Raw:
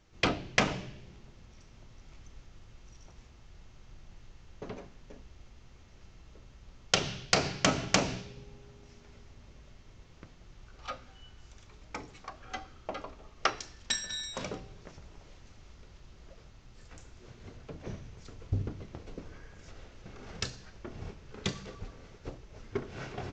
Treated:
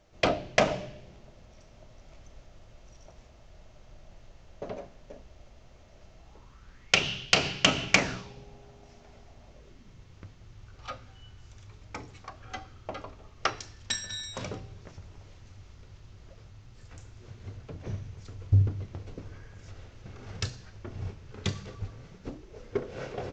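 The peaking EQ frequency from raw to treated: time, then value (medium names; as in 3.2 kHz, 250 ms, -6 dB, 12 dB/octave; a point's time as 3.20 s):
peaking EQ +12.5 dB 0.5 oct
6.17 s 620 Hz
7.06 s 2.9 kHz
7.87 s 2.9 kHz
8.38 s 690 Hz
9.52 s 690 Hz
10.06 s 100 Hz
21.91 s 100 Hz
22.62 s 510 Hz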